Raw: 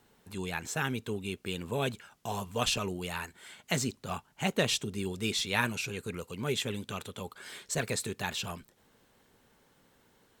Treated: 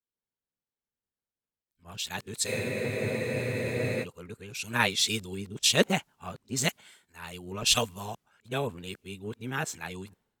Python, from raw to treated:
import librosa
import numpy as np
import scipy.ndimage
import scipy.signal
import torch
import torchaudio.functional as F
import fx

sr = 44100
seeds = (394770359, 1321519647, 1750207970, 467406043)

y = x[::-1].copy()
y = fx.spec_freeze(y, sr, seeds[0], at_s=2.48, hold_s=1.56)
y = fx.band_widen(y, sr, depth_pct=100)